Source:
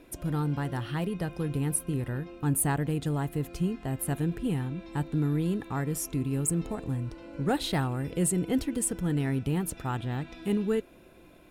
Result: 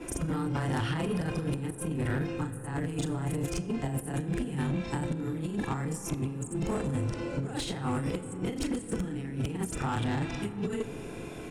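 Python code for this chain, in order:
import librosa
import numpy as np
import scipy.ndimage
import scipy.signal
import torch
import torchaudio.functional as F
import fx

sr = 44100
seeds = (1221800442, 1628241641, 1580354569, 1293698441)

y = fx.frame_reverse(x, sr, frame_ms=88.0)
y = fx.high_shelf(y, sr, hz=5500.0, db=10.0)
y = fx.over_compress(y, sr, threshold_db=-36.0, ratio=-0.5)
y = scipy.signal.sosfilt(scipy.signal.butter(4, 8800.0, 'lowpass', fs=sr, output='sos'), y)
y = fx.peak_eq(y, sr, hz=4100.0, db=-6.0, octaves=0.58)
y = fx.notch(y, sr, hz=620.0, q=16.0)
y = fx.rev_freeverb(y, sr, rt60_s=3.8, hf_ratio=0.3, predelay_ms=5, drr_db=13.5)
y = 10.0 ** (-30.5 / 20.0) * np.tanh(y / 10.0 ** (-30.5 / 20.0))
y = fx.band_squash(y, sr, depth_pct=40)
y = y * librosa.db_to_amplitude(6.5)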